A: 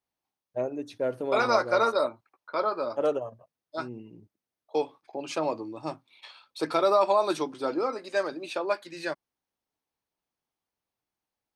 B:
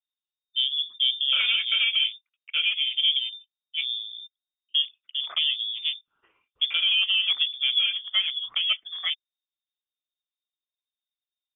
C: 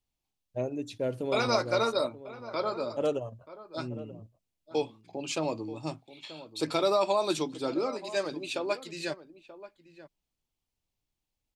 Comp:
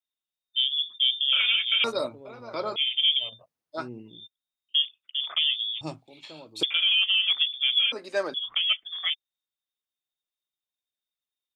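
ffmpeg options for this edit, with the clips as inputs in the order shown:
-filter_complex "[2:a]asplit=2[a][b];[0:a]asplit=2[c][d];[1:a]asplit=5[e][f][g][h][i];[e]atrim=end=1.842[j];[a]atrim=start=1.838:end=2.762[k];[f]atrim=start=2.758:end=3.42[l];[c]atrim=start=3.18:end=4.32[m];[g]atrim=start=4.08:end=5.812[n];[b]atrim=start=5.808:end=6.632[o];[h]atrim=start=6.628:end=7.922[p];[d]atrim=start=7.918:end=8.342[q];[i]atrim=start=8.338[r];[j][k]acrossfade=d=0.004:c1=hsin:c2=hsin[s];[s][l]acrossfade=d=0.004:c1=hsin:c2=hsin[t];[t][m]acrossfade=d=0.24:c1=tri:c2=tri[u];[u][n]acrossfade=d=0.24:c1=tri:c2=tri[v];[v][o]acrossfade=d=0.004:c1=hsin:c2=hsin[w];[w][p]acrossfade=d=0.004:c1=hsin:c2=hsin[x];[x][q]acrossfade=d=0.004:c1=hsin:c2=hsin[y];[y][r]acrossfade=d=0.004:c1=hsin:c2=hsin"

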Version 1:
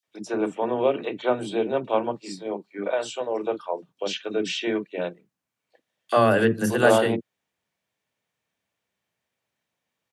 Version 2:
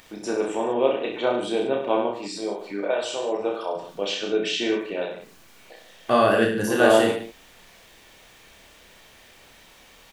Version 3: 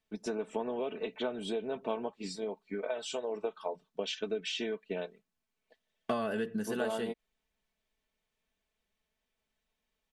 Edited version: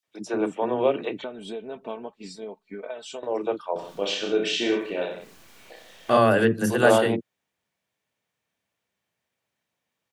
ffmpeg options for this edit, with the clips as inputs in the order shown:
-filter_complex "[0:a]asplit=3[a][b][c];[a]atrim=end=1.242[d];[2:a]atrim=start=1.238:end=3.232[e];[b]atrim=start=3.228:end=3.762[f];[1:a]atrim=start=3.758:end=6.172[g];[c]atrim=start=6.168[h];[d][e]acrossfade=d=0.004:c1=hsin:c2=hsin[i];[i][f]acrossfade=d=0.004:c1=hsin:c2=hsin[j];[j][g]acrossfade=d=0.004:c1=hsin:c2=hsin[k];[k][h]acrossfade=d=0.004:c1=hsin:c2=hsin"

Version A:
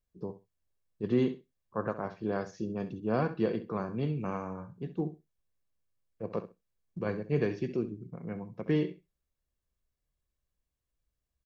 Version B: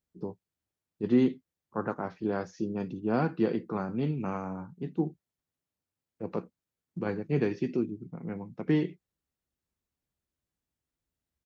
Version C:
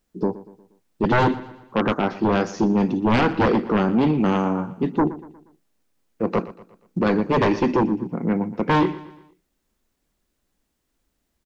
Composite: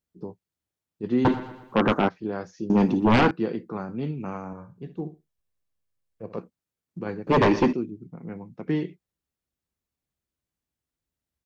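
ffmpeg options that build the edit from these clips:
-filter_complex "[2:a]asplit=3[a][b][c];[1:a]asplit=5[d][e][f][g][h];[d]atrim=end=1.252[i];[a]atrim=start=1.248:end=2.092[j];[e]atrim=start=2.088:end=2.702[k];[b]atrim=start=2.698:end=3.312[l];[f]atrim=start=3.308:end=4.532[m];[0:a]atrim=start=4.528:end=6.382[n];[g]atrim=start=6.378:end=7.272[o];[c]atrim=start=7.268:end=7.732[p];[h]atrim=start=7.728[q];[i][j]acrossfade=d=0.004:c1=hsin:c2=hsin[r];[r][k]acrossfade=d=0.004:c1=hsin:c2=hsin[s];[s][l]acrossfade=d=0.004:c1=hsin:c2=hsin[t];[t][m]acrossfade=d=0.004:c1=hsin:c2=hsin[u];[u][n]acrossfade=d=0.004:c1=hsin:c2=hsin[v];[v][o]acrossfade=d=0.004:c1=hsin:c2=hsin[w];[w][p]acrossfade=d=0.004:c1=hsin:c2=hsin[x];[x][q]acrossfade=d=0.004:c1=hsin:c2=hsin"

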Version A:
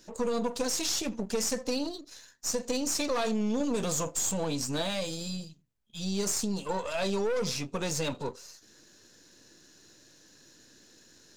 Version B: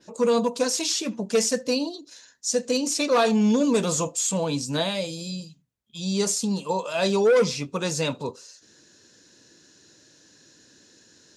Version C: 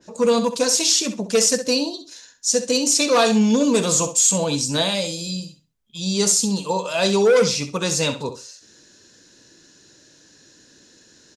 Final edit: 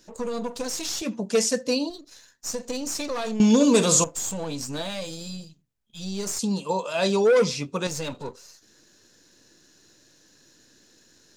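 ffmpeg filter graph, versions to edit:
-filter_complex "[1:a]asplit=2[a][b];[0:a]asplit=4[c][d][e][f];[c]atrim=end=1.022[g];[a]atrim=start=1.018:end=1.902[h];[d]atrim=start=1.898:end=3.402[i];[2:a]atrim=start=3.398:end=4.042[j];[e]atrim=start=4.038:end=6.392[k];[b]atrim=start=6.388:end=7.872[l];[f]atrim=start=7.868[m];[g][h]acrossfade=d=0.004:c1=hsin:c2=hsin[n];[n][i]acrossfade=d=0.004:c1=hsin:c2=hsin[o];[o][j]acrossfade=d=0.004:c1=hsin:c2=hsin[p];[p][k]acrossfade=d=0.004:c1=hsin:c2=hsin[q];[q][l]acrossfade=d=0.004:c1=hsin:c2=hsin[r];[r][m]acrossfade=d=0.004:c1=hsin:c2=hsin"

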